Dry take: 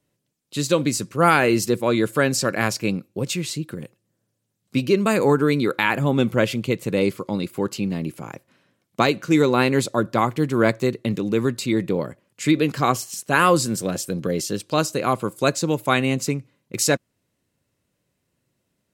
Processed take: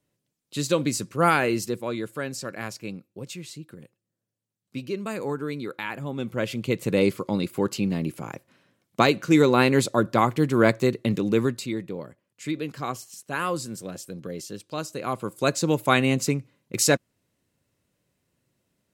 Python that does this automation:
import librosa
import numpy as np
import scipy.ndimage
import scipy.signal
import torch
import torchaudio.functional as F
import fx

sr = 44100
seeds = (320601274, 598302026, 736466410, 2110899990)

y = fx.gain(x, sr, db=fx.line((1.27, -3.5), (2.13, -12.0), (6.17, -12.0), (6.83, -0.5), (11.38, -0.5), (11.85, -11.0), (14.8, -11.0), (15.7, -0.5)))